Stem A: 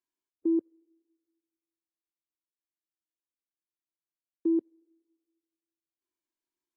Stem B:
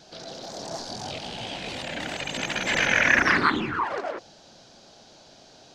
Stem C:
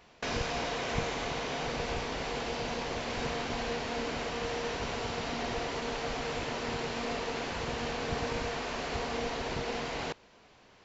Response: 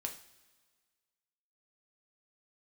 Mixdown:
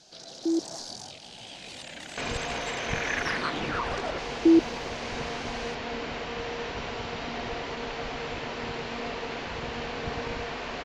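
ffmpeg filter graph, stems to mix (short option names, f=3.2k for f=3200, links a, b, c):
-filter_complex "[0:a]agate=range=-33dB:threshold=-59dB:ratio=3:detection=peak,volume=-1dB[a];[1:a]acompressor=threshold=-29dB:ratio=5,lowpass=f=11k:w=0.5412,lowpass=f=11k:w=1.3066,afade=t=out:st=0.78:d=0.39:silence=0.316228,afade=t=in:st=2.82:d=0.35:silence=0.354813[b];[2:a]lowpass=3.1k,adelay=1950,volume=-9dB[c];[a][b][c]amix=inputs=3:normalize=0,dynaudnorm=f=360:g=7:m=9dB,crystalizer=i=2.5:c=0"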